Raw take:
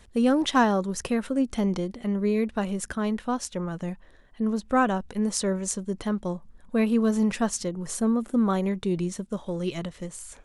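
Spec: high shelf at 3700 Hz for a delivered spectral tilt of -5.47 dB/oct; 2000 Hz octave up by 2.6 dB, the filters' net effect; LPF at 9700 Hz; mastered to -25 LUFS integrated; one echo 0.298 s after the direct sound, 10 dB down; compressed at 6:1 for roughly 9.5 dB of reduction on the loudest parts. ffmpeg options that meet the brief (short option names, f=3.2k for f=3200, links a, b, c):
-af "lowpass=9.7k,equalizer=f=2k:t=o:g=5,highshelf=f=3.7k:g=-6,acompressor=threshold=-26dB:ratio=6,aecho=1:1:298:0.316,volume=6.5dB"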